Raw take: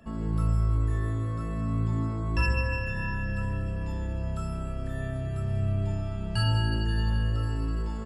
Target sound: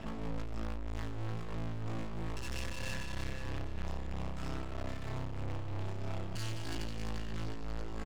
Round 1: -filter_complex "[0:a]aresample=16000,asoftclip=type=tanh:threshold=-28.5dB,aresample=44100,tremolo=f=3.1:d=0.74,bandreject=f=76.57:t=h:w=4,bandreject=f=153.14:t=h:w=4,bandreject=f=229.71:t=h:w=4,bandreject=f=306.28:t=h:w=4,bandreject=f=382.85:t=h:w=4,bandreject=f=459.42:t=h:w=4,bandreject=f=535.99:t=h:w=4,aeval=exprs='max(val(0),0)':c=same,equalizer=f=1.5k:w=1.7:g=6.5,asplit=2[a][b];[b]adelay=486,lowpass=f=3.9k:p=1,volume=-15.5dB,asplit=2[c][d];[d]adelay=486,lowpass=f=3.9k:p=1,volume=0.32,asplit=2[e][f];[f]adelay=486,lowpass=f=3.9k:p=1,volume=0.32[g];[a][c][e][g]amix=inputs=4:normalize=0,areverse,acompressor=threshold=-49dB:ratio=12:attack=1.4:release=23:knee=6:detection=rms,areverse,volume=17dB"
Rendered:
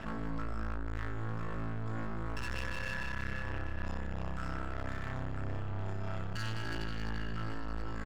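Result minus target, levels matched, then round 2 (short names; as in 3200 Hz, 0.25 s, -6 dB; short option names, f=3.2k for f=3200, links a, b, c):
2000 Hz band +4.5 dB; soft clip: distortion -5 dB
-filter_complex "[0:a]aresample=16000,asoftclip=type=tanh:threshold=-40.5dB,aresample=44100,tremolo=f=3.1:d=0.74,bandreject=f=76.57:t=h:w=4,bandreject=f=153.14:t=h:w=4,bandreject=f=229.71:t=h:w=4,bandreject=f=306.28:t=h:w=4,bandreject=f=382.85:t=h:w=4,bandreject=f=459.42:t=h:w=4,bandreject=f=535.99:t=h:w=4,aeval=exprs='max(val(0),0)':c=same,equalizer=f=1.5k:w=1.7:g=-3.5,asplit=2[a][b];[b]adelay=486,lowpass=f=3.9k:p=1,volume=-15.5dB,asplit=2[c][d];[d]adelay=486,lowpass=f=3.9k:p=1,volume=0.32,asplit=2[e][f];[f]adelay=486,lowpass=f=3.9k:p=1,volume=0.32[g];[a][c][e][g]amix=inputs=4:normalize=0,areverse,acompressor=threshold=-49dB:ratio=12:attack=1.4:release=23:knee=6:detection=rms,areverse,volume=17dB"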